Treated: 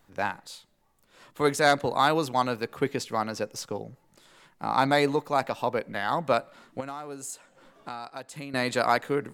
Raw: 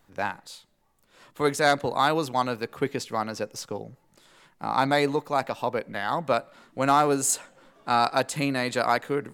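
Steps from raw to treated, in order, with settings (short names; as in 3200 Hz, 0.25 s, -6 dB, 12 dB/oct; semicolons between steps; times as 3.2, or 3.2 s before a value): 6.8–8.54 compressor 4:1, threshold -38 dBFS, peak gain reduction 18.5 dB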